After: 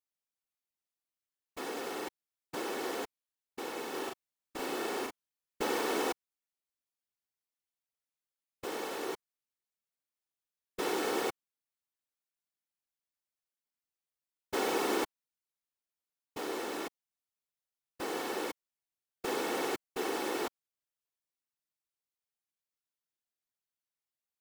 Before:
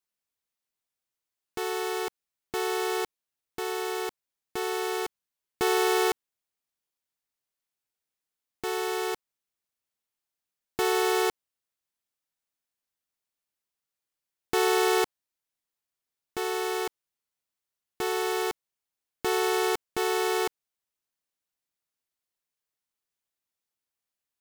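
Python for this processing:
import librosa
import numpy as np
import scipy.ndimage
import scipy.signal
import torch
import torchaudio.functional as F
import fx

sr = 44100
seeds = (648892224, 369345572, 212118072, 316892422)

y = fx.whisperise(x, sr, seeds[0])
y = fx.doubler(y, sr, ms=38.0, db=-2.0, at=(3.93, 5.63), fade=0.02)
y = y * librosa.db_to_amplitude(-8.0)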